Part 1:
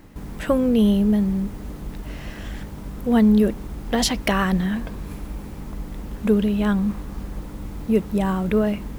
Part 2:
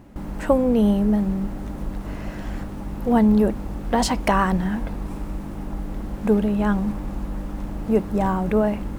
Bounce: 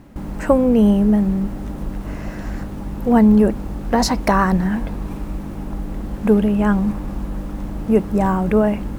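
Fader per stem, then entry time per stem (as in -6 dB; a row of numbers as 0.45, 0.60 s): -6.5, +1.5 dB; 0.00, 0.00 s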